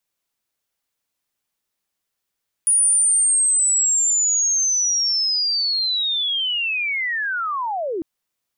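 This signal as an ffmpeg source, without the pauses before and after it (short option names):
-f lavfi -i "aevalsrc='pow(10,(-13-9*t/5.35)/20)*sin(2*PI*(9700*t-9400*t*t/(2*5.35)))':d=5.35:s=44100"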